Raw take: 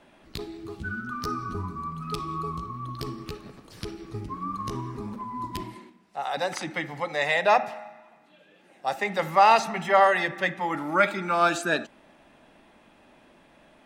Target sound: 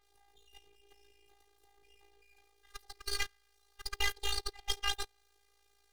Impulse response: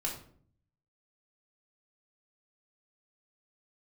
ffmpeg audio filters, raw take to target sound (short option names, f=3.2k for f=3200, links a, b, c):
-filter_complex "[0:a]aeval=exprs='val(0)+0.5*0.0299*sgn(val(0))':c=same,highpass=45,equalizer=f=1.8k:t=o:w=0.38:g=3.5,acrossover=split=280|630|1800[a][b][c][d];[b]acrusher=samples=37:mix=1:aa=0.000001[e];[a][e][c][d]amix=inputs=4:normalize=0,aeval=exprs='max(val(0),0)':c=same,agate=range=-23dB:threshold=-26dB:ratio=16:detection=peak,tremolo=f=24:d=0.71,afftfilt=real='hypot(re,im)*cos(PI*b)':imag='0':win_size=1024:overlap=0.75,asetrate=103194,aresample=44100,adynamicequalizer=threshold=0.00562:dfrequency=5100:dqfactor=0.7:tfrequency=5100:tqfactor=0.7:attack=5:release=100:ratio=0.375:range=2:mode=cutabove:tftype=highshelf,volume=-3dB"